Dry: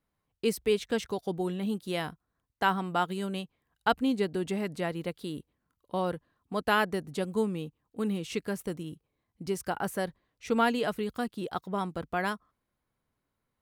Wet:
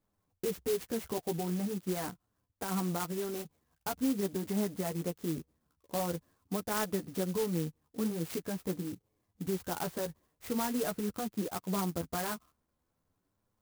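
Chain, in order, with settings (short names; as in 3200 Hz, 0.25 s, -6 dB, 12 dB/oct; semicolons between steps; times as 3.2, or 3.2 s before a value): high shelf 3700 Hz -10.5 dB; in parallel at -0.5 dB: compressor, threshold -34 dBFS, peak gain reduction 13.5 dB; on the sum: limiter -21.5 dBFS, peak gain reduction 10.5 dB; flange 0.44 Hz, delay 9.3 ms, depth 4.1 ms, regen +5%; clock jitter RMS 0.1 ms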